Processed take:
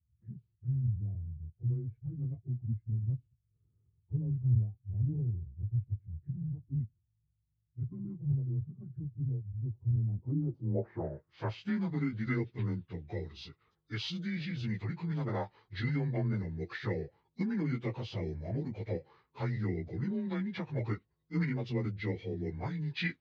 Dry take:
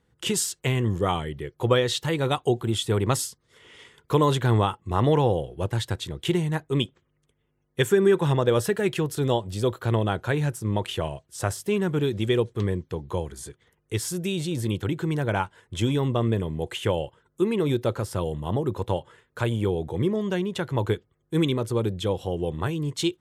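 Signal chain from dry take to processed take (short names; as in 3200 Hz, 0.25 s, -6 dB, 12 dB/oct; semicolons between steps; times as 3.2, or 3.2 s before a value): inharmonic rescaling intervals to 92%; low-pass sweep 130 Hz -> 4600 Hz, 9.93–11.76; formant shift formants -5 st; gain -7.5 dB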